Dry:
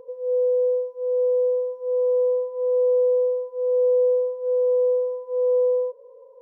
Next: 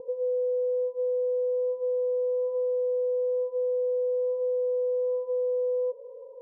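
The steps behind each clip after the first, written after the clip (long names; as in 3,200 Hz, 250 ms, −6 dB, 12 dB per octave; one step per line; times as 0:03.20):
elliptic low-pass filter 920 Hz, stop band 40 dB
brickwall limiter −27 dBFS, peak gain reduction 12 dB
level +3.5 dB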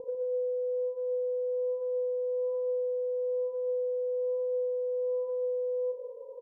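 downward compressor 12 to 1, threshold −32 dBFS, peak gain reduction 7 dB
loudspeakers that aren't time-aligned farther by 13 metres −10 dB, 50 metres −10 dB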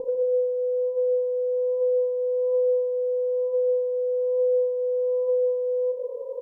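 downward compressor 1.5 to 1, threshold −36 dBFS, peak gain reduction 3 dB
convolution reverb RT60 1.3 s, pre-delay 4 ms, DRR 7 dB
level +9 dB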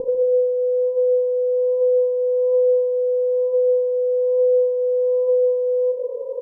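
low-shelf EQ 420 Hz +10.5 dB
level +1 dB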